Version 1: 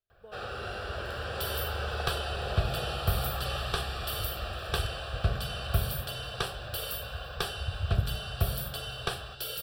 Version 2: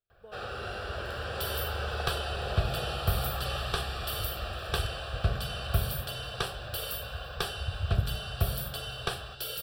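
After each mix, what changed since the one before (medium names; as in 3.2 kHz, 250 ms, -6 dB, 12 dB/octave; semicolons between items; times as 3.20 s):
no change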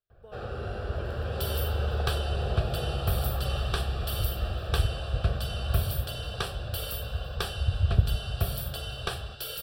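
first sound: add tilt shelf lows +8 dB, about 720 Hz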